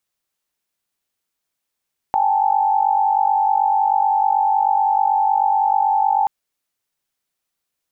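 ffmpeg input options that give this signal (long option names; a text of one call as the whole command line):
ffmpeg -f lavfi -i "aevalsrc='0.119*(sin(2*PI*783.99*t)+sin(2*PI*830.61*t)+sin(2*PI*880*t))':duration=4.13:sample_rate=44100" out.wav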